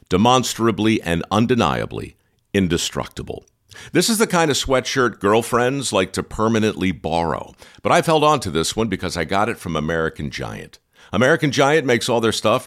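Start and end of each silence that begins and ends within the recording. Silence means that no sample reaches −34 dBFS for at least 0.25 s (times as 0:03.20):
0:02.09–0:02.55
0:03.38–0:03.72
0:10.75–0:11.13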